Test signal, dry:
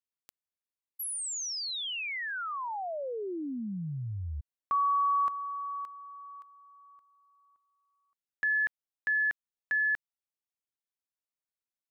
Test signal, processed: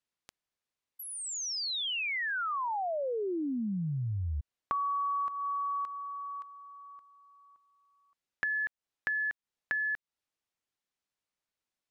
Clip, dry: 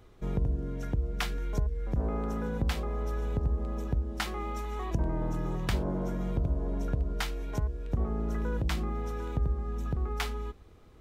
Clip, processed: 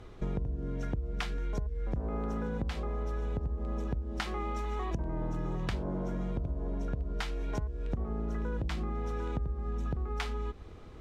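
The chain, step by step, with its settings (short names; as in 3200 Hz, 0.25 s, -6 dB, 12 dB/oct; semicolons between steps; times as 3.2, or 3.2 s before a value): compressor 6:1, threshold -38 dBFS; air absorption 52 m; gain +7 dB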